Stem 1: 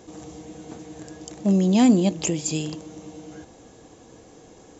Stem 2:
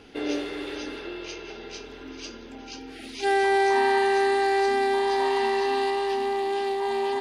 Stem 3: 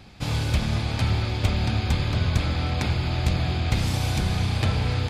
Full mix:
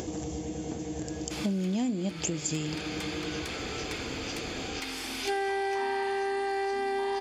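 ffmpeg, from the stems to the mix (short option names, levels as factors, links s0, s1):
-filter_complex "[0:a]equalizer=f=1200:t=o:w=1.1:g=-6.5,acompressor=mode=upward:threshold=0.0316:ratio=2.5,volume=1.12,asplit=2[s0][s1];[1:a]adelay=2050,volume=1.12[s2];[2:a]highpass=1200,aeval=exprs='0.188*(cos(1*acos(clip(val(0)/0.188,-1,1)))-cos(1*PI/2))+0.0335*(cos(5*acos(clip(val(0)/0.188,-1,1)))-cos(5*PI/2))':c=same,adelay=1100,volume=0.355[s3];[s1]apad=whole_len=408288[s4];[s2][s4]sidechaincompress=threshold=0.0158:ratio=8:attack=16:release=1200[s5];[s0][s5][s3]amix=inputs=3:normalize=0,equalizer=f=73:t=o:w=0.69:g=6.5,bandreject=f=3900:w=13,acompressor=threshold=0.0447:ratio=12"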